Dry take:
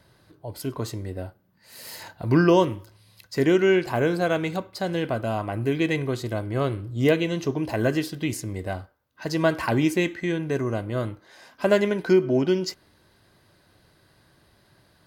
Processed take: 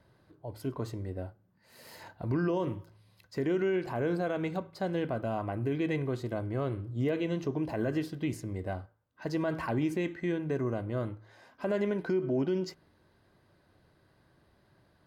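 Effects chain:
high-shelf EQ 2,500 Hz −11 dB
hum removal 54.41 Hz, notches 3
brickwall limiter −17 dBFS, peak gain reduction 10 dB
level −4.5 dB

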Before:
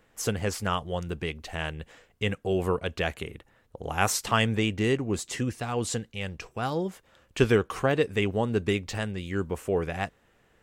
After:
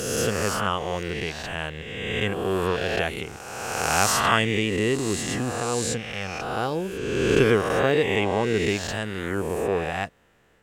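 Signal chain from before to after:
peak hold with a rise ahead of every peak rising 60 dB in 1.73 s
low-shelf EQ 64 Hz −5 dB

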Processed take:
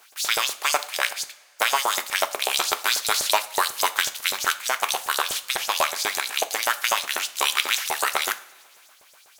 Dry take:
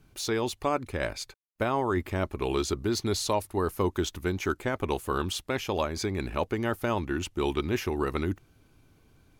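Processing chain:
compressing power law on the bin magnitudes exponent 0.4
auto-filter high-pass saw up 8.1 Hz 560–7,700 Hz
coupled-rooms reverb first 0.38 s, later 1.9 s, from −17 dB, DRR 10 dB
level +4.5 dB

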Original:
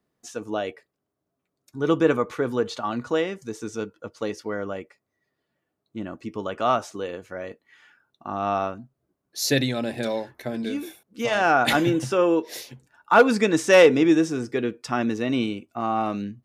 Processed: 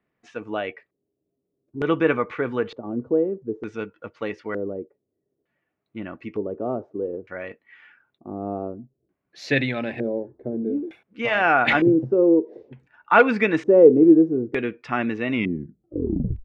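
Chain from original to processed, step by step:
turntable brake at the end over 1.15 s
auto-filter low-pass square 0.55 Hz 410–2,300 Hz
level −1 dB

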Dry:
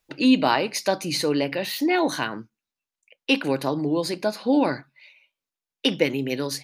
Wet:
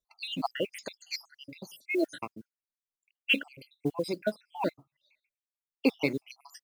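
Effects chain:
time-frequency cells dropped at random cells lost 75%
noise that follows the level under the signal 30 dB
expander for the loud parts 1.5 to 1, over −43 dBFS

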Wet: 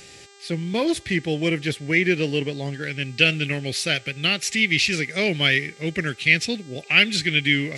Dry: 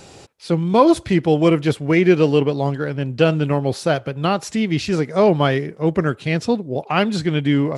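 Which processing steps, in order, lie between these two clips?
high shelf with overshoot 1,500 Hz +7 dB, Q 3, from 0:02.83 +12.5 dB
hum with harmonics 400 Hz, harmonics 21, −42 dBFS −3 dB per octave
parametric band 900 Hz −5 dB 1.5 octaves
level −7 dB

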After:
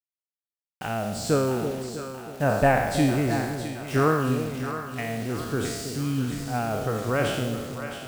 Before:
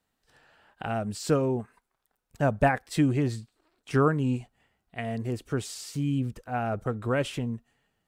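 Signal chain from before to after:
peak hold with a decay on every bin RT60 1.00 s
bit reduction 7 bits
echo with a time of its own for lows and highs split 670 Hz, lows 323 ms, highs 665 ms, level −8.5 dB

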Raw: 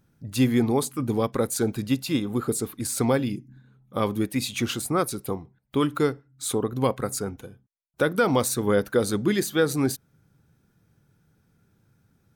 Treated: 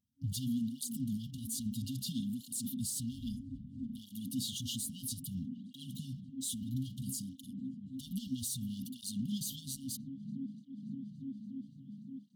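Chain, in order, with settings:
leveller curve on the samples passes 3
noise gate −31 dBFS, range −14 dB
low-shelf EQ 120 Hz −8 dB
delay with a band-pass on its return 288 ms, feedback 76%, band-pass 420 Hz, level −11 dB
brickwall limiter −32.5 dBFS, peak gain reduction 24.5 dB
0:03.11–0:04.08: amplitude modulation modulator 180 Hz, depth 55%
brick-wall band-stop 270–2,800 Hz
through-zero flanger with one copy inverted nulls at 0.61 Hz, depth 7 ms
level +5.5 dB

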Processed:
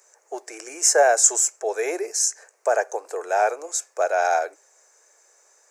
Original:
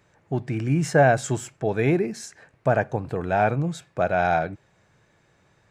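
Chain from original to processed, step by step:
Butterworth high-pass 410 Hz 48 dB per octave
high shelf with overshoot 4,700 Hz +11.5 dB, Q 3
level +1.5 dB

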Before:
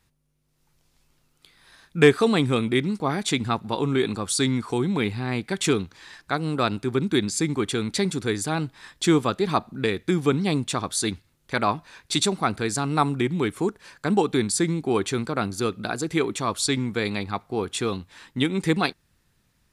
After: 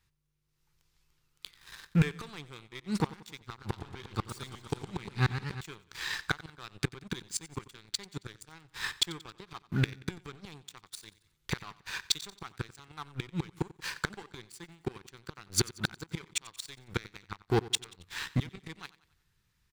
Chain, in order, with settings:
dynamic equaliser 520 Hz, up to −5 dB, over −38 dBFS, Q 1.7
gate with flip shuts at −19 dBFS, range −28 dB
leveller curve on the samples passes 3
graphic EQ with 15 bands 250 Hz −11 dB, 630 Hz −11 dB, 10,000 Hz −5 dB
repeating echo 91 ms, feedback 47%, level −19 dB
0:03.47–0:05.61: feedback echo with a swinging delay time 117 ms, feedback 74%, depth 197 cents, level −9.5 dB

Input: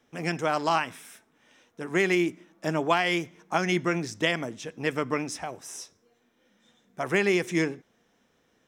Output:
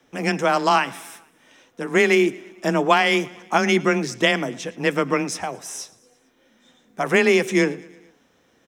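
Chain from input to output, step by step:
frequency shifter +19 Hz
repeating echo 113 ms, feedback 59%, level −22.5 dB
level +7 dB

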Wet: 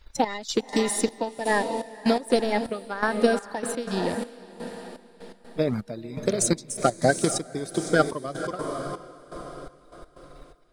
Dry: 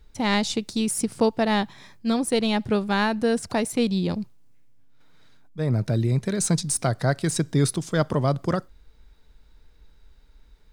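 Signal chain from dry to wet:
spectral magnitudes quantised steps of 30 dB
parametric band 89 Hz −10 dB 2.2 octaves
transient designer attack +8 dB, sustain −1 dB
feedback delay with all-pass diffusion 503 ms, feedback 46%, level −9.5 dB
gate pattern "xx..x.xxx...x" 124 BPM −12 dB

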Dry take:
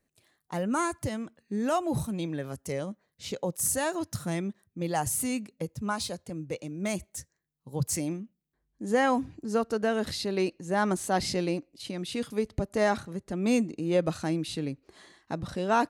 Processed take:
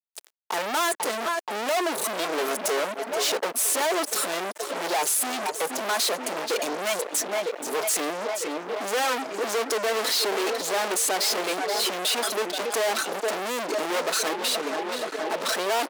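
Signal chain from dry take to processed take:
0:14.33–0:15.41: output level in coarse steps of 22 dB
hard clipping −28.5 dBFS, distortion −7 dB
comb filter 4.6 ms, depth 64%
brickwall limiter −28 dBFS, peak gain reduction 4 dB
tape delay 476 ms, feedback 78%, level −11.5 dB, low-pass 2,700 Hz
reverb reduction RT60 0.54 s
fuzz pedal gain 52 dB, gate −58 dBFS
high-pass filter 370 Hz 24 dB per octave
level −9 dB

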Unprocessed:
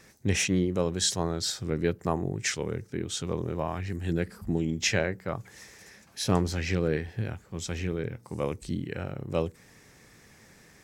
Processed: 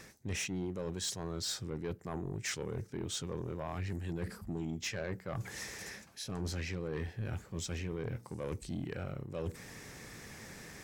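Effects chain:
reversed playback
downward compressor 6 to 1, threshold −39 dBFS, peak gain reduction 20 dB
reversed playback
soft clipping −36 dBFS, distortion −13 dB
level +6 dB

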